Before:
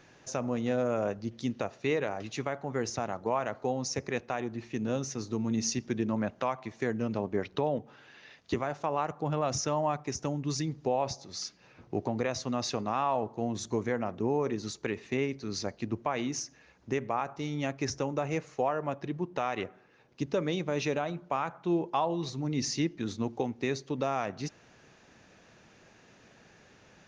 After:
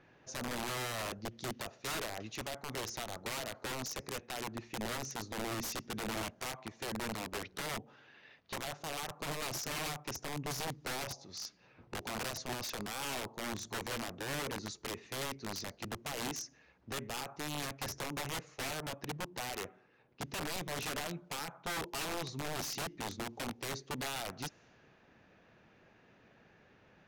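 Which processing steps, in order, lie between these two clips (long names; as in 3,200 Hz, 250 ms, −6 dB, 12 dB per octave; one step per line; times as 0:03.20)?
wrap-around overflow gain 27.5 dB
low-pass that shuts in the quiet parts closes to 2,500 Hz, open at −35.5 dBFS
level −5 dB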